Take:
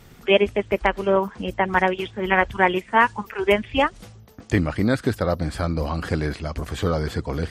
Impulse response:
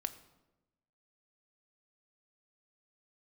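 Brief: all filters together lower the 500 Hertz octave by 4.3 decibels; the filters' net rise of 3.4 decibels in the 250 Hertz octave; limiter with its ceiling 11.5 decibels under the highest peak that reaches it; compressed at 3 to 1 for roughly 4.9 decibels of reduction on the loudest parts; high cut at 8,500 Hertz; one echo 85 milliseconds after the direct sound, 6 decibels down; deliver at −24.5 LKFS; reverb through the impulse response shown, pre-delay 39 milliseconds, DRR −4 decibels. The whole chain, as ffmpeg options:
-filter_complex "[0:a]lowpass=8500,equalizer=frequency=250:width_type=o:gain=7,equalizer=frequency=500:width_type=o:gain=-8.5,acompressor=threshold=-19dB:ratio=3,alimiter=limit=-17.5dB:level=0:latency=1,aecho=1:1:85:0.501,asplit=2[link_01][link_02];[1:a]atrim=start_sample=2205,adelay=39[link_03];[link_02][link_03]afir=irnorm=-1:irlink=0,volume=4.5dB[link_04];[link_01][link_04]amix=inputs=2:normalize=0,volume=-2dB"

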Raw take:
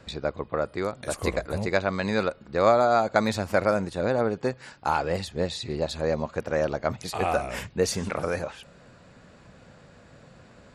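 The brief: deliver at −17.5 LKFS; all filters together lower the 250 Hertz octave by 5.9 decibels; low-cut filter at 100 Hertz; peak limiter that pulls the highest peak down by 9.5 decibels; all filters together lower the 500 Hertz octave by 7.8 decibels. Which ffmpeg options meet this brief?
ffmpeg -i in.wav -af "highpass=100,equalizer=frequency=250:width_type=o:gain=-5.5,equalizer=frequency=500:width_type=o:gain=-8.5,volume=16dB,alimiter=limit=-2.5dB:level=0:latency=1" out.wav

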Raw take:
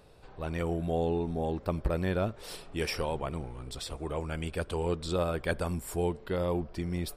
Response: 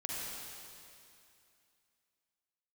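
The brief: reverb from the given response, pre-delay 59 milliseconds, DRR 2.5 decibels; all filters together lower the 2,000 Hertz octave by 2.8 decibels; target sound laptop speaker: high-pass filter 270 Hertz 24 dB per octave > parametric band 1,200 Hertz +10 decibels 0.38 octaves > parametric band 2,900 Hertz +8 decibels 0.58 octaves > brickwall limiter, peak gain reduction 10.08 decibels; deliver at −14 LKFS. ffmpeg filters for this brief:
-filter_complex "[0:a]equalizer=frequency=2000:width_type=o:gain=-9,asplit=2[link_01][link_02];[1:a]atrim=start_sample=2205,adelay=59[link_03];[link_02][link_03]afir=irnorm=-1:irlink=0,volume=-5dB[link_04];[link_01][link_04]amix=inputs=2:normalize=0,highpass=frequency=270:width=0.5412,highpass=frequency=270:width=1.3066,equalizer=frequency=1200:width_type=o:width=0.38:gain=10,equalizer=frequency=2900:width_type=o:width=0.58:gain=8,volume=22dB,alimiter=limit=-3.5dB:level=0:latency=1"

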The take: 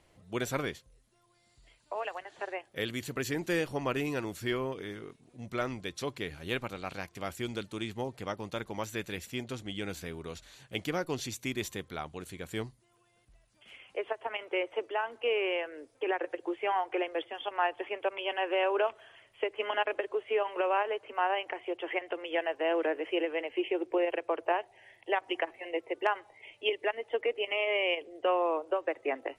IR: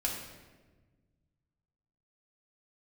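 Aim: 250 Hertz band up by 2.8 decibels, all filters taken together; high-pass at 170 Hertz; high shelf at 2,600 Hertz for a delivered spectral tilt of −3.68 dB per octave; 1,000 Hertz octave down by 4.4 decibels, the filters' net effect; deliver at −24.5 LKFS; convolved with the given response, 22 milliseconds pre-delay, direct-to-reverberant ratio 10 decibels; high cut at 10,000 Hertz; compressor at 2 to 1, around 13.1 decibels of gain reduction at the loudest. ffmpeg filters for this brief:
-filter_complex "[0:a]highpass=170,lowpass=10000,equalizer=frequency=250:width_type=o:gain=5.5,equalizer=frequency=1000:width_type=o:gain=-7,highshelf=frequency=2600:gain=4,acompressor=threshold=-50dB:ratio=2,asplit=2[link_01][link_02];[1:a]atrim=start_sample=2205,adelay=22[link_03];[link_02][link_03]afir=irnorm=-1:irlink=0,volume=-14.5dB[link_04];[link_01][link_04]amix=inputs=2:normalize=0,volume=20.5dB"

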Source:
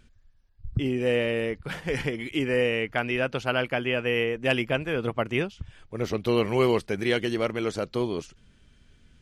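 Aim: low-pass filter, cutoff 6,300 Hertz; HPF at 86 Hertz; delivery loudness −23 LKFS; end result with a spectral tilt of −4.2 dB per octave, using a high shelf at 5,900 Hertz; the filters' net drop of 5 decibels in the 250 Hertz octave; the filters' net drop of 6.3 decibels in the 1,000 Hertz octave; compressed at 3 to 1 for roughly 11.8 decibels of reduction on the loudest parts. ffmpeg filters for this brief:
ffmpeg -i in.wav -af "highpass=86,lowpass=6300,equalizer=frequency=250:width_type=o:gain=-6,equalizer=frequency=1000:width_type=o:gain=-8.5,highshelf=frequency=5900:gain=-7.5,acompressor=threshold=-38dB:ratio=3,volume=16.5dB" out.wav

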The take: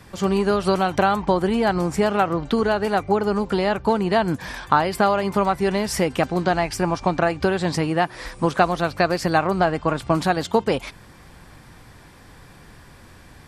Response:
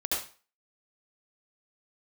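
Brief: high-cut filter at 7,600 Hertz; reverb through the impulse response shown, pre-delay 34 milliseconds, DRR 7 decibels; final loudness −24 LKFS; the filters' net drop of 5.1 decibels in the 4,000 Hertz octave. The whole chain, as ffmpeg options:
-filter_complex "[0:a]lowpass=7600,equalizer=frequency=4000:width_type=o:gain=-6.5,asplit=2[link_01][link_02];[1:a]atrim=start_sample=2205,adelay=34[link_03];[link_02][link_03]afir=irnorm=-1:irlink=0,volume=-14dB[link_04];[link_01][link_04]amix=inputs=2:normalize=0,volume=-3dB"

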